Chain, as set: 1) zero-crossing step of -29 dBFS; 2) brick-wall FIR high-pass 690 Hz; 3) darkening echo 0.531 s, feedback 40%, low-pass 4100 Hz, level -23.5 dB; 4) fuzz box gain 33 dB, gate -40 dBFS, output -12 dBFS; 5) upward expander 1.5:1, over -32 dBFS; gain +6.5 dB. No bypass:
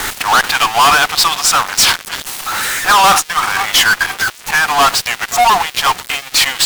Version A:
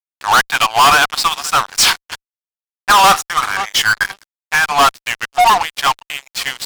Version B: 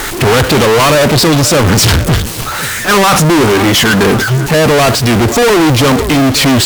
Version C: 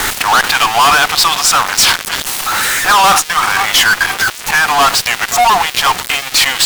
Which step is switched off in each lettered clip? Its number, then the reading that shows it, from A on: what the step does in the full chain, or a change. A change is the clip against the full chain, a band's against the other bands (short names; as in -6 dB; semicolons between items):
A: 1, distortion -15 dB; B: 2, 125 Hz band +23.5 dB; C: 5, momentary loudness spread change -3 LU